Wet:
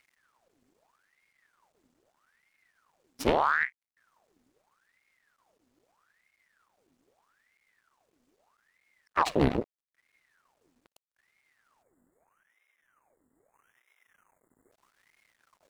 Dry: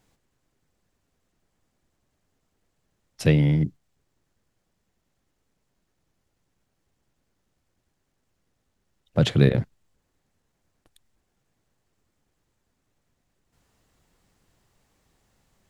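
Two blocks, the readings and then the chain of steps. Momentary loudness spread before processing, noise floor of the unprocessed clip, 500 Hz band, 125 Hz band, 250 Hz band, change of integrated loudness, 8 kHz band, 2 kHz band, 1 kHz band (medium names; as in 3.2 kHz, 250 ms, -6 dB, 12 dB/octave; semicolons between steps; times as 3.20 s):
11 LU, -76 dBFS, -3.5 dB, -17.0 dB, -8.5 dB, -6.0 dB, -3.5 dB, +4.5 dB, +14.5 dB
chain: half-wave rectifier; in parallel at +2 dB: compression, threshold -32 dBFS, peak gain reduction 16 dB; on the sum: spectral selection erased 11.82–14.72 s, 1.8–7.1 kHz; ring modulator with a swept carrier 1.2 kHz, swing 80%, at 0.79 Hz; trim -2.5 dB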